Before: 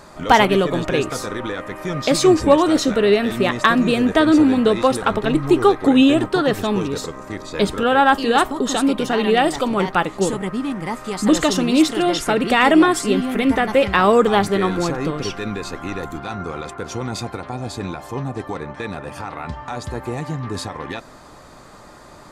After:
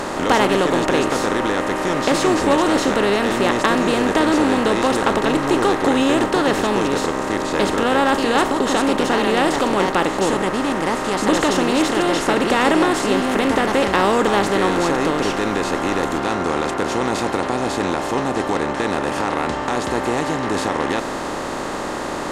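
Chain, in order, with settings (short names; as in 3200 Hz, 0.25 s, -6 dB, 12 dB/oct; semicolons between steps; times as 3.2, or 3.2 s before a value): per-bin compression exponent 0.4; gain -8 dB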